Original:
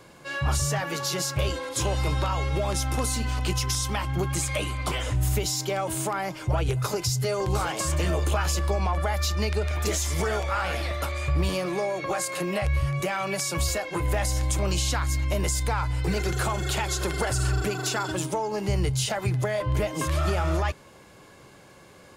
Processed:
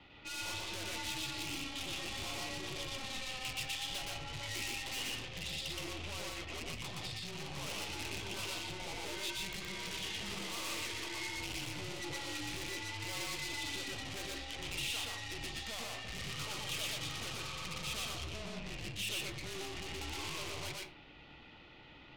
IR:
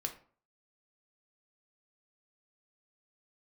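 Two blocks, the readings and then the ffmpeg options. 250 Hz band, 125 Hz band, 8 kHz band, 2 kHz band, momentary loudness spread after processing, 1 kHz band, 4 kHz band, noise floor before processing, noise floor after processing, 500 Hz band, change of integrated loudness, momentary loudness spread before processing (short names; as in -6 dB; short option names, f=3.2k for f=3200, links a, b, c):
-15.0 dB, -22.0 dB, -13.0 dB, -8.5 dB, 5 LU, -16.0 dB, -5.0 dB, -51 dBFS, -56 dBFS, -19.0 dB, -13.0 dB, 3 LU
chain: -filter_complex "[0:a]highpass=f=190:t=q:w=0.5412,highpass=f=190:t=q:w=1.307,lowpass=f=3.5k:t=q:w=0.5176,lowpass=f=3.5k:t=q:w=0.7071,lowpass=f=3.5k:t=q:w=1.932,afreqshift=-240,aeval=exprs='(tanh(100*val(0)+0.5)-tanh(0.5))/100':c=same,asplit=2[a][b];[1:a]atrim=start_sample=2205,adelay=120[c];[b][c]afir=irnorm=-1:irlink=0,volume=0dB[d];[a][d]amix=inputs=2:normalize=0,aexciter=amount=4.5:drive=4.9:freq=2.3k,volume=-7dB"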